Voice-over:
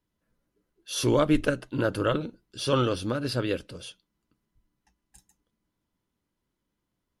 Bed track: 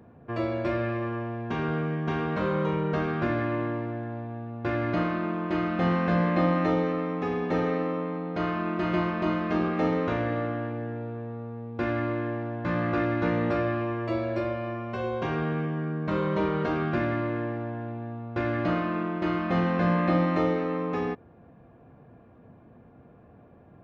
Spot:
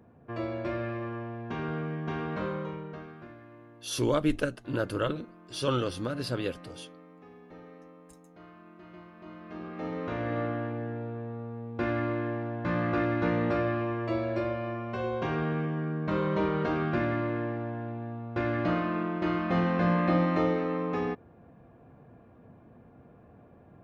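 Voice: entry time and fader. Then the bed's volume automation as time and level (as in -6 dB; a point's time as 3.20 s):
2.95 s, -4.0 dB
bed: 2.42 s -5 dB
3.40 s -23 dB
9.10 s -23 dB
10.40 s -1.5 dB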